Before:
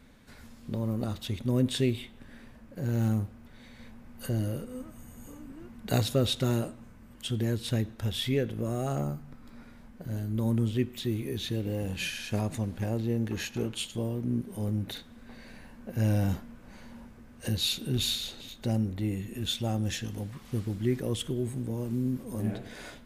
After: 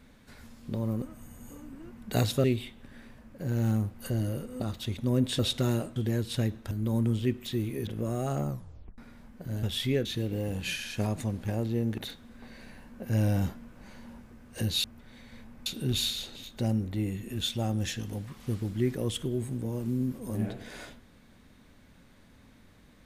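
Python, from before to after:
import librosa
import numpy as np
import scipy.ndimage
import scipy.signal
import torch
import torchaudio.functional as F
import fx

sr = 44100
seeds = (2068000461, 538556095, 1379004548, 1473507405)

y = fx.edit(x, sr, fx.swap(start_s=1.02, length_s=0.79, other_s=4.79, other_length_s=1.42),
    fx.move(start_s=3.31, length_s=0.82, to_s=17.71),
    fx.cut(start_s=6.78, length_s=0.52),
    fx.swap(start_s=8.05, length_s=0.42, other_s=10.23, other_length_s=1.16),
    fx.tape_stop(start_s=9.09, length_s=0.49),
    fx.cut(start_s=13.32, length_s=1.53), tone=tone)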